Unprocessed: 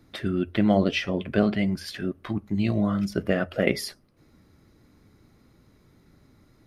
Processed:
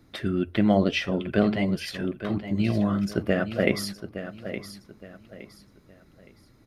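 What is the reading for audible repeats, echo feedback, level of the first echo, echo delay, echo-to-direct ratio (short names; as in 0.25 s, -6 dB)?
3, 31%, -11.0 dB, 0.866 s, -10.5 dB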